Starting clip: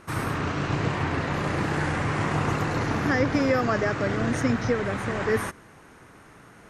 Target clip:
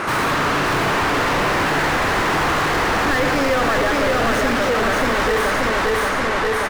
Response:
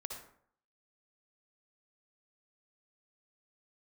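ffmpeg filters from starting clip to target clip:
-filter_complex "[0:a]aecho=1:1:580|1160|1740|2320|2900:0.668|0.267|0.107|0.0428|0.0171,asplit=2[a][b];[b]highpass=f=720:p=1,volume=41dB,asoftclip=type=tanh:threshold=-10.5dB[c];[a][c]amix=inputs=2:normalize=0,lowpass=f=2.2k:p=1,volume=-6dB,asplit=2[d][e];[1:a]atrim=start_sample=2205,highshelf=f=11k:g=8[f];[e][f]afir=irnorm=-1:irlink=0,volume=-2.5dB[g];[d][g]amix=inputs=2:normalize=0,asubboost=boost=4.5:cutoff=53,volume=-4.5dB"

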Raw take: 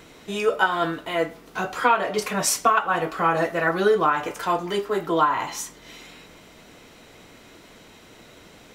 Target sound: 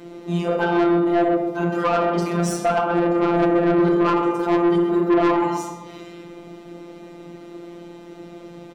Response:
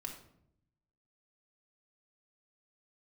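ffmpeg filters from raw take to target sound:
-filter_complex "[0:a]firequalizer=gain_entry='entry(210,0);entry(950,-17);entry(1700,-23)':delay=0.05:min_phase=1[a];[1:a]atrim=start_sample=2205[b];[a][b]afir=irnorm=-1:irlink=0,afftfilt=real='hypot(re,im)*cos(PI*b)':imag='0':win_size=1024:overlap=0.75,asplit=2[c][d];[d]adelay=131,lowpass=f=2.4k:p=1,volume=-7dB,asplit=2[e][f];[f]adelay=131,lowpass=f=2.4k:p=1,volume=0.44,asplit=2[g][h];[h]adelay=131,lowpass=f=2.4k:p=1,volume=0.44,asplit=2[i][j];[j]adelay=131,lowpass=f=2.4k:p=1,volume=0.44,asplit=2[k][l];[l]adelay=131,lowpass=f=2.4k:p=1,volume=0.44[m];[c][e][g][i][k][m]amix=inputs=6:normalize=0,asplit=2[n][o];[o]highpass=f=720:p=1,volume=33dB,asoftclip=type=tanh:threshold=-7.5dB[p];[n][p]amix=inputs=2:normalize=0,lowpass=f=5.8k:p=1,volume=-6dB"

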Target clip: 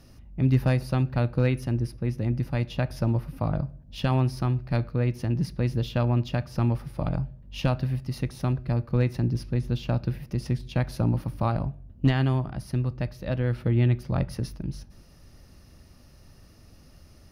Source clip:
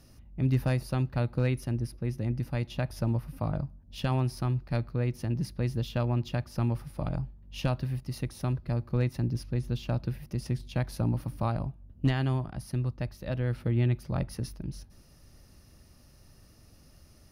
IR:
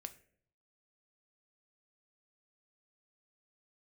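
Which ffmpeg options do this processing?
-filter_complex "[0:a]asplit=2[a][b];[1:a]atrim=start_sample=2205,lowpass=6.4k[c];[b][c]afir=irnorm=-1:irlink=0,volume=1dB[d];[a][d]amix=inputs=2:normalize=0"

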